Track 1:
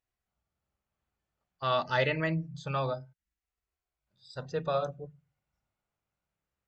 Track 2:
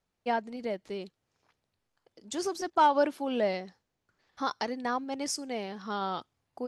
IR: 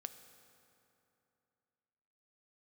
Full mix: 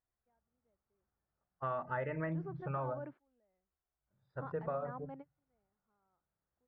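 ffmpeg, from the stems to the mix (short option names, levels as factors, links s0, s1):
-filter_complex "[0:a]equalizer=f=3900:w=2.2:g=-5.5,volume=0.75,asplit=2[s0][s1];[1:a]alimiter=limit=0.075:level=0:latency=1:release=129,volume=0.224[s2];[s1]apad=whole_len=294294[s3];[s2][s3]sidechaingate=range=0.0178:threshold=0.00112:ratio=16:detection=peak[s4];[s0][s4]amix=inputs=2:normalize=0,lowpass=f=1800:w=0.5412,lowpass=f=1800:w=1.3066,acompressor=threshold=0.02:ratio=6"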